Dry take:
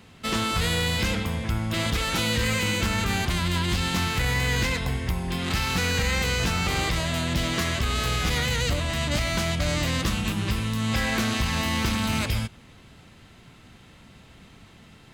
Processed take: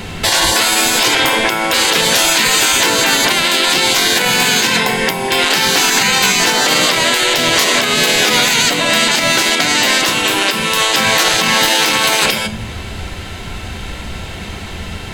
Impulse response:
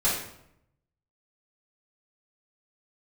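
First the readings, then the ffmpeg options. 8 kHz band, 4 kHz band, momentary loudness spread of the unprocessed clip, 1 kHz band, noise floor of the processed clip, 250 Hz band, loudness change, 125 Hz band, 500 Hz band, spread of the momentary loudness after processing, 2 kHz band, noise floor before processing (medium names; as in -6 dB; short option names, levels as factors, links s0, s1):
+18.5 dB, +17.0 dB, 4 LU, +15.0 dB, -27 dBFS, +6.5 dB, +14.0 dB, -2.0 dB, +13.5 dB, 17 LU, +15.0 dB, -51 dBFS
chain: -filter_complex "[0:a]asubboost=boost=7:cutoff=53,asplit=2[s0][s1];[1:a]atrim=start_sample=2205,asetrate=79380,aresample=44100[s2];[s1][s2]afir=irnorm=-1:irlink=0,volume=0.211[s3];[s0][s3]amix=inputs=2:normalize=0,acompressor=threshold=0.0891:ratio=3,bandreject=f=1200:w=10,afftfilt=real='re*lt(hypot(re,im),0.0891)':imag='im*lt(hypot(re,im),0.0891)':win_size=1024:overlap=0.75,alimiter=level_in=15.8:limit=0.891:release=50:level=0:latency=1,volume=0.891"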